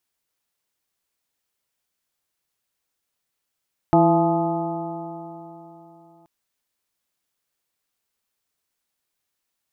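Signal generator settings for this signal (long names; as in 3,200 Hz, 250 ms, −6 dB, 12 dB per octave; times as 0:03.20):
stiff-string partials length 2.33 s, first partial 165 Hz, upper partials 3/−11.5/2/1/−14.5/−10 dB, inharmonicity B 0.0032, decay 3.48 s, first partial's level −18.5 dB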